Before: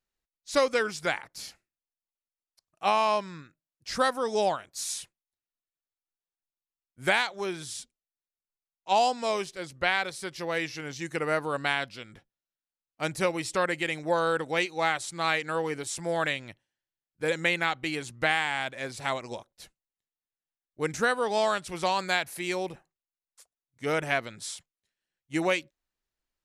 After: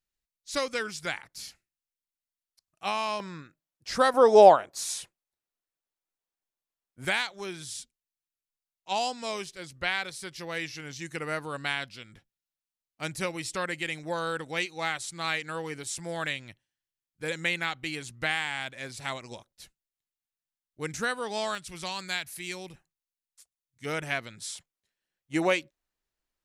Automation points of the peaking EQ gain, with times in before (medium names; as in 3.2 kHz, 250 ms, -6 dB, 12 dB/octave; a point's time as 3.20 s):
peaking EQ 610 Hz 2.7 oct
-7.5 dB
from 3.20 s +3 dB
from 4.14 s +12.5 dB
from 4.78 s +5 dB
from 7.05 s -7 dB
from 21.55 s -13 dB
from 23.85 s -6.5 dB
from 24.55 s +1.5 dB